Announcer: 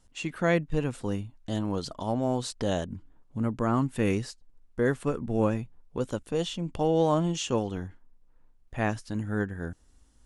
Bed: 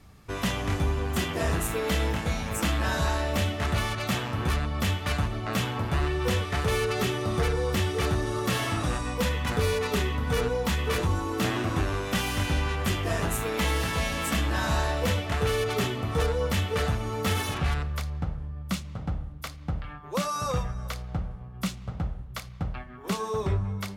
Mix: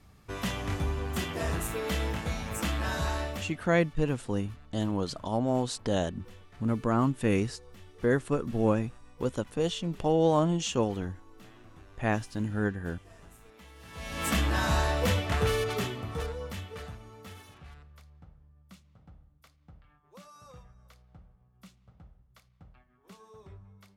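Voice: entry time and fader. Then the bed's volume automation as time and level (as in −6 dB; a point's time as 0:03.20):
3.25 s, 0.0 dB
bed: 0:03.23 −4.5 dB
0:03.75 −26.5 dB
0:13.75 −26.5 dB
0:14.27 −0.5 dB
0:15.43 −0.5 dB
0:17.55 −23 dB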